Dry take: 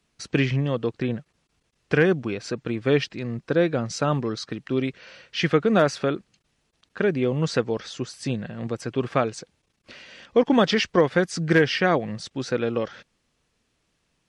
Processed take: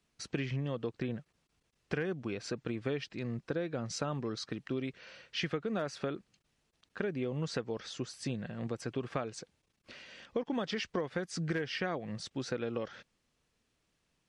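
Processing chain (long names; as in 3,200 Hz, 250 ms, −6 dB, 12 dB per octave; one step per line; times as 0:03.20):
downward compressor 6 to 1, threshold −25 dBFS, peak gain reduction 12 dB
level −6.5 dB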